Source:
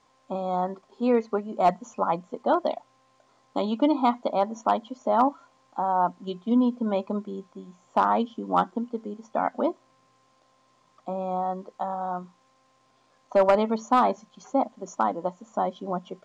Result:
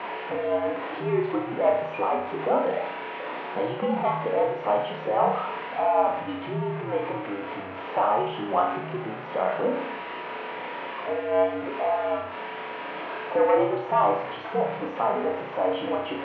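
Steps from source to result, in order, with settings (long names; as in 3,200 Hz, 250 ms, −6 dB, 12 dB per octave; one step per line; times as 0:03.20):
converter with a step at zero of −27.5 dBFS
in parallel at +2 dB: brickwall limiter −21.5 dBFS, peak gain reduction 10.5 dB
on the sum: flutter between parallel walls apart 5.6 metres, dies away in 0.62 s
single-sideband voice off tune −87 Hz 350–2,900 Hz
level −7 dB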